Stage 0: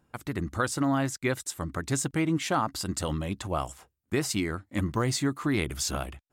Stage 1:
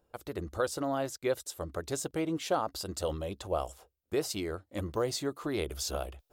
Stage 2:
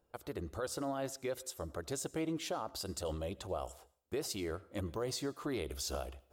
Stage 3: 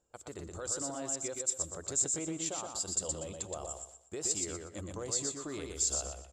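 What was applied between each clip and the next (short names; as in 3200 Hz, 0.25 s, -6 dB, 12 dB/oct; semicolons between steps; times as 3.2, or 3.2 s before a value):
graphic EQ 125/250/500/1000/2000/8000 Hz -11/-10/+7/-5/-10/-7 dB; reverse; upward compressor, threshold -52 dBFS; reverse
limiter -25.5 dBFS, peak gain reduction 8 dB; on a send at -21 dB: reverb RT60 0.50 s, pre-delay 76 ms; on the sum: gain -3 dB
synth low-pass 7400 Hz, resonance Q 15; on a send: feedback echo 0.121 s, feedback 29%, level -4 dB; on the sum: gain -4 dB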